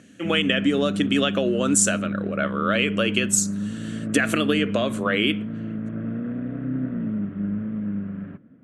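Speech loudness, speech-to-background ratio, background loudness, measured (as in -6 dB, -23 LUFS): -22.5 LUFS, 6.5 dB, -29.0 LUFS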